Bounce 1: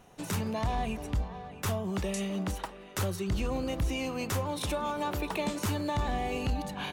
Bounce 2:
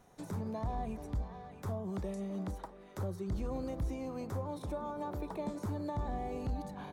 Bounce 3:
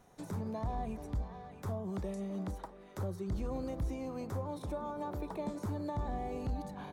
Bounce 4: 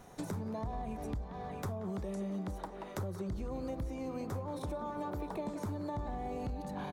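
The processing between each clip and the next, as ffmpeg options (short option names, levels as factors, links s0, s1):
-filter_complex "[0:a]equalizer=f=2800:w=4.5:g=-10.5,acrossover=split=1100[s0][s1];[s1]acompressor=threshold=0.00251:ratio=6[s2];[s0][s2]amix=inputs=2:normalize=0,volume=0.531"
-af anull
-filter_complex "[0:a]asplit=2[s0][s1];[s1]adelay=180,highpass=300,lowpass=3400,asoftclip=type=hard:threshold=0.0158,volume=0.398[s2];[s0][s2]amix=inputs=2:normalize=0,acompressor=threshold=0.00631:ratio=6,volume=2.51"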